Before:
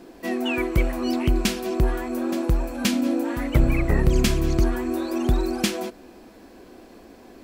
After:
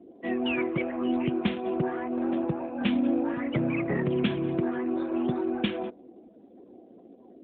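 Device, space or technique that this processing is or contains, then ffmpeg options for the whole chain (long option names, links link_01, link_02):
mobile call with aggressive noise cancelling: -filter_complex "[0:a]asettb=1/sr,asplit=3[link_01][link_02][link_03];[link_01]atrim=end=1.394[link_04];[link_02]atrim=start=1.39:end=3.33,asetpts=PTS-STARTPTS,afade=type=in:duration=0.004:curve=qsin,afade=type=out:start_time=1.936:duration=0.004:curve=qsin,equalizer=frequency=160:width_type=o:width=0.33:gain=4,equalizer=frequency=800:width_type=o:width=0.33:gain=4,equalizer=frequency=8000:width_type=o:width=0.33:gain=-9[link_05];[link_03]atrim=start=3.326[link_06];[link_04][link_05]acrossfade=duration=0.004:curve1=hsin:curve2=qsin[link_07];[link_07][link_06]acrossfade=duration=0.004:curve1=qsin:curve2=hsin,highpass=frequency=140:width=0.5412,highpass=frequency=140:width=1.3066,afftdn=noise_reduction=25:noise_floor=-44,volume=-2.5dB" -ar 8000 -c:a libopencore_amrnb -b:a 12200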